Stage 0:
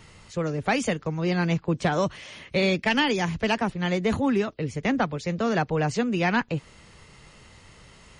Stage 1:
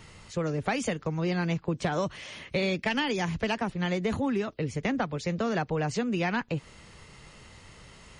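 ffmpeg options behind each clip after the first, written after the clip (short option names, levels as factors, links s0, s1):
-af "acompressor=threshold=0.0501:ratio=3"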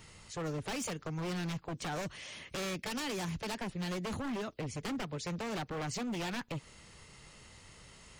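-af "highshelf=f=5500:g=8.5,aeval=exprs='0.0501*(abs(mod(val(0)/0.0501+3,4)-2)-1)':c=same,volume=0.501"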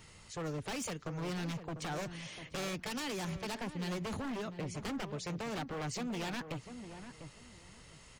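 -filter_complex "[0:a]asplit=2[s0][s1];[s1]adelay=698,lowpass=f=1200:p=1,volume=0.355,asplit=2[s2][s3];[s3]adelay=698,lowpass=f=1200:p=1,volume=0.23,asplit=2[s4][s5];[s5]adelay=698,lowpass=f=1200:p=1,volume=0.23[s6];[s0][s2][s4][s6]amix=inputs=4:normalize=0,volume=0.841"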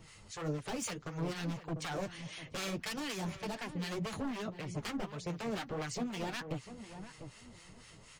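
-filter_complex "[0:a]flanger=delay=6:depth=4.1:regen=-29:speed=1.7:shape=sinusoidal,acrossover=split=970[s0][s1];[s0]aeval=exprs='val(0)*(1-0.7/2+0.7/2*cos(2*PI*4*n/s))':c=same[s2];[s1]aeval=exprs='val(0)*(1-0.7/2-0.7/2*cos(2*PI*4*n/s))':c=same[s3];[s2][s3]amix=inputs=2:normalize=0,volume=2.24"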